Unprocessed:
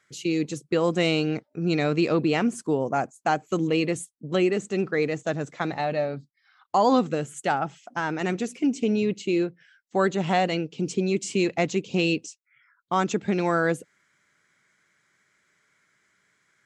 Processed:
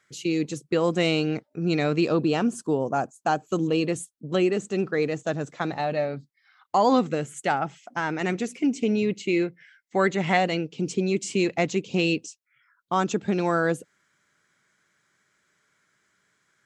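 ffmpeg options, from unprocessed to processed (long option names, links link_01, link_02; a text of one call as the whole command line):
ffmpeg -i in.wav -af "asetnsamples=nb_out_samples=441:pad=0,asendcmd='2.05 equalizer g -12;3.88 equalizer g -4;5.97 equalizer g 4;9.26 equalizer g 12;10.37 equalizer g 1;12.19 equalizer g -6',equalizer=frequency=2100:width_type=o:width=0.32:gain=-0.5" out.wav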